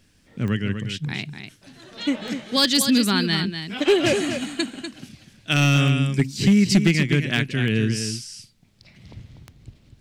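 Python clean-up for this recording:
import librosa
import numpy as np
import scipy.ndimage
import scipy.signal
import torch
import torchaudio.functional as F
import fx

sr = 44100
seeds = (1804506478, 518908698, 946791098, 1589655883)

y = fx.fix_declip(x, sr, threshold_db=-10.0)
y = fx.fix_declick_ar(y, sr, threshold=10.0)
y = fx.fix_echo_inverse(y, sr, delay_ms=245, level_db=-8.5)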